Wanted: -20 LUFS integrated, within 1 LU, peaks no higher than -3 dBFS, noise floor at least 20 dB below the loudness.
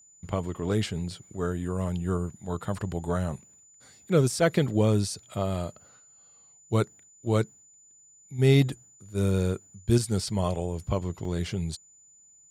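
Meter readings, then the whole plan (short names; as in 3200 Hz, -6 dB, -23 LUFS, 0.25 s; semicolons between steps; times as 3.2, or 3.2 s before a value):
dropouts 1; longest dropout 2.7 ms; steady tone 7000 Hz; tone level -54 dBFS; loudness -28.0 LUFS; peak -9.5 dBFS; loudness target -20.0 LUFS
-> interpolate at 11.25, 2.7 ms; notch 7000 Hz, Q 30; gain +8 dB; limiter -3 dBFS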